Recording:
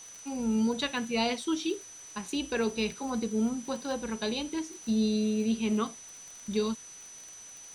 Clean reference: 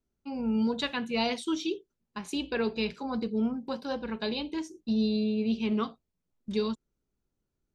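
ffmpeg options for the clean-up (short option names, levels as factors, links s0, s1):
-af "adeclick=t=4,bandreject=f=6000:w=30,afwtdn=0.0025"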